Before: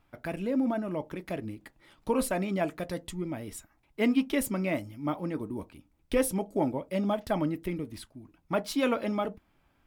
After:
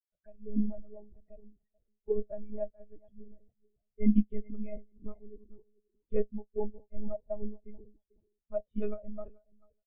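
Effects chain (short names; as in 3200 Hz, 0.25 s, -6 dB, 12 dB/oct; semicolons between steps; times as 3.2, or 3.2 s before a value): frequency-shifting echo 0.433 s, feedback 33%, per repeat +36 Hz, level -10 dB; monotone LPC vocoder at 8 kHz 210 Hz; spectral expander 2.5:1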